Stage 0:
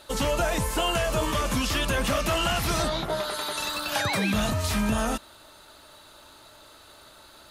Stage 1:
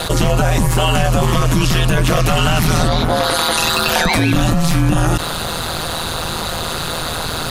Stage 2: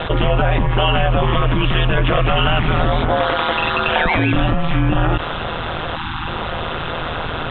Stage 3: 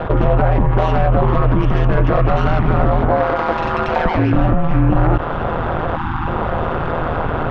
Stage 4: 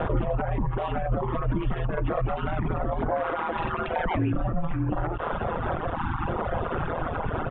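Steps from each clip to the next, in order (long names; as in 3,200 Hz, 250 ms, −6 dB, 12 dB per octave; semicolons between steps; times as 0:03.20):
low-shelf EQ 150 Hz +10 dB; ring modulation 81 Hz; envelope flattener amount 70%; level +8 dB
Butterworth low-pass 3,500 Hz 96 dB per octave; time-frequency box erased 0:05.96–0:06.28, 360–760 Hz; dynamic equaliser 180 Hz, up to −7 dB, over −32 dBFS, Q 1.7
phase distortion by the signal itself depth 0.23 ms; low-pass filter 1,200 Hz 12 dB per octave; in parallel at −2 dB: speech leveller within 5 dB 0.5 s; on the sum: level −1.5 dB
downsampling to 8,000 Hz; brickwall limiter −11 dBFS, peak gain reduction 9 dB; reverb reduction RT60 1.7 s; level −4 dB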